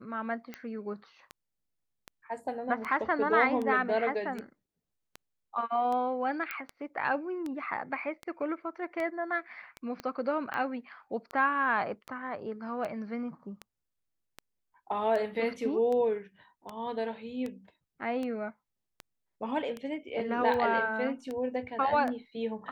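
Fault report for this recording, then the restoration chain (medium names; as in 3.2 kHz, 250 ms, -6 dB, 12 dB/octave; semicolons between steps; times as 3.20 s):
tick 78 rpm -24 dBFS
6.51 s: pop -20 dBFS
10.00 s: pop -24 dBFS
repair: de-click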